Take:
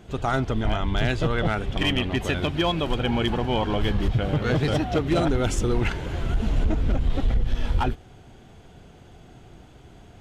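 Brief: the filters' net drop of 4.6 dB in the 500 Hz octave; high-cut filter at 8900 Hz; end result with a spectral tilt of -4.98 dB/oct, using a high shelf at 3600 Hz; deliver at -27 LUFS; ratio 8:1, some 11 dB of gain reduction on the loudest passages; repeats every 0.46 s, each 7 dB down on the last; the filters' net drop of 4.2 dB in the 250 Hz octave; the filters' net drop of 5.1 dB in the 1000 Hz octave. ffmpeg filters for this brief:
-af "lowpass=8.9k,equalizer=f=250:t=o:g=-4.5,equalizer=f=500:t=o:g=-3,equalizer=f=1k:t=o:g=-5.5,highshelf=f=3.6k:g=-3.5,acompressor=threshold=-29dB:ratio=8,aecho=1:1:460|920|1380|1840|2300:0.447|0.201|0.0905|0.0407|0.0183,volume=7dB"

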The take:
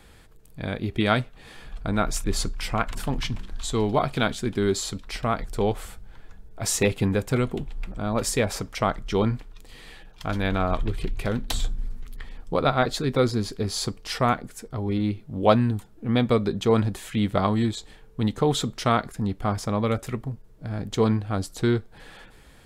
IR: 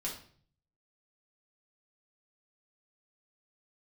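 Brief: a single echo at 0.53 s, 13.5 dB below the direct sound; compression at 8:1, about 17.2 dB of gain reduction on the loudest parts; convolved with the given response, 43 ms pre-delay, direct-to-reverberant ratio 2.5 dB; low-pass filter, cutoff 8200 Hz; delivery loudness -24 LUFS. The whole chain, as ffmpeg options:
-filter_complex "[0:a]lowpass=8.2k,acompressor=threshold=-30dB:ratio=8,aecho=1:1:530:0.211,asplit=2[a][b];[1:a]atrim=start_sample=2205,adelay=43[c];[b][c]afir=irnorm=-1:irlink=0,volume=-4dB[d];[a][d]amix=inputs=2:normalize=0,volume=10dB"

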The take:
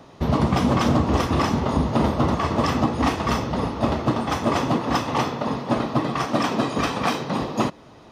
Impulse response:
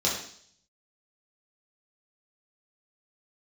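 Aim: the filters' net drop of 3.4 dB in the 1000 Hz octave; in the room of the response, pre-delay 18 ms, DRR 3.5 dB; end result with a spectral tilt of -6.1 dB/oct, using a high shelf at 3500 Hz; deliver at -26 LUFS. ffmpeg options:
-filter_complex "[0:a]equalizer=f=1k:t=o:g=-3.5,highshelf=f=3.5k:g=-8.5,asplit=2[a][b];[1:a]atrim=start_sample=2205,adelay=18[c];[b][c]afir=irnorm=-1:irlink=0,volume=-14dB[d];[a][d]amix=inputs=2:normalize=0,volume=-4.5dB"

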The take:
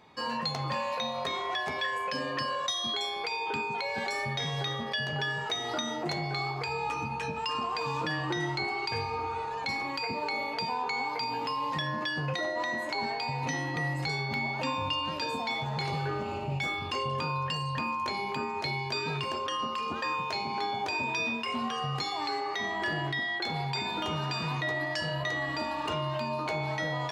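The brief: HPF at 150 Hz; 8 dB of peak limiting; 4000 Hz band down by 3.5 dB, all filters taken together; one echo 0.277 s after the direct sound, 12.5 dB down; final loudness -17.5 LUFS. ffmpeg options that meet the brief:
-af "highpass=150,equalizer=f=4k:t=o:g=-4.5,alimiter=level_in=4.5dB:limit=-24dB:level=0:latency=1,volume=-4.5dB,aecho=1:1:277:0.237,volume=18.5dB"

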